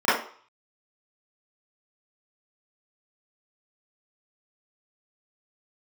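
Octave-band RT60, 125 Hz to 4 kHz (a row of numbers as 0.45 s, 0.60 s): 0.30 s, 0.35 s, 0.45 s, 0.50 s, 0.45 s, 0.45 s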